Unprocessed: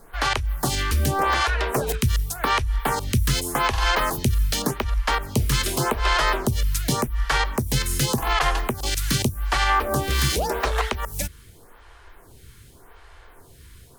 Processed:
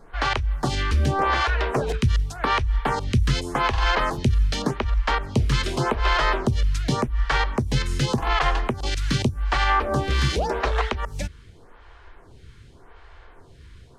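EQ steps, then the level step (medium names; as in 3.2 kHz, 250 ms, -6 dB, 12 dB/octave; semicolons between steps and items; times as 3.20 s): tape spacing loss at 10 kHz 29 dB; treble shelf 3 kHz +11 dB; +1.5 dB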